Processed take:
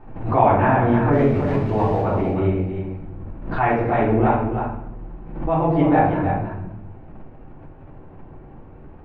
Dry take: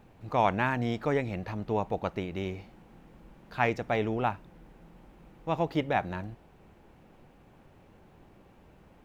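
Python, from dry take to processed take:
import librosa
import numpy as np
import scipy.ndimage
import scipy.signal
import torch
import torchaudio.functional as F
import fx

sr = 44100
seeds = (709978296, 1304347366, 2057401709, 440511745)

p1 = fx.crossing_spikes(x, sr, level_db=-23.0, at=(1.12, 2.0))
p2 = scipy.signal.sosfilt(scipy.signal.butter(2, 1300.0, 'lowpass', fs=sr, output='sos'), p1)
p3 = fx.peak_eq(p2, sr, hz=530.0, db=-3.0, octaves=0.31)
p4 = fx.hum_notches(p3, sr, base_hz=60, count=3)
p5 = p4 + fx.echo_single(p4, sr, ms=315, db=-7.0, dry=0)
p6 = fx.room_shoebox(p5, sr, seeds[0], volume_m3=170.0, walls='mixed', distance_m=3.4)
y = fx.pre_swell(p6, sr, db_per_s=72.0)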